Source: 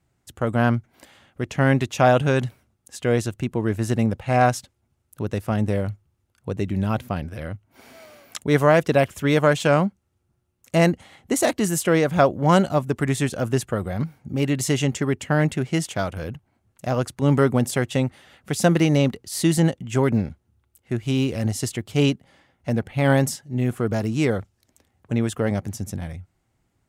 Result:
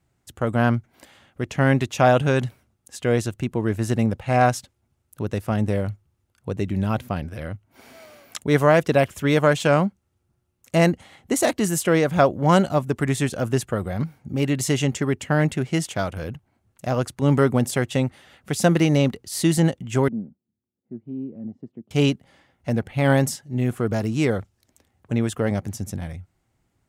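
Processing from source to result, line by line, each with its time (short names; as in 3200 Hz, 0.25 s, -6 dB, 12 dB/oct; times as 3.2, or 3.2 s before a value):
20.08–21.91 ladder band-pass 250 Hz, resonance 45%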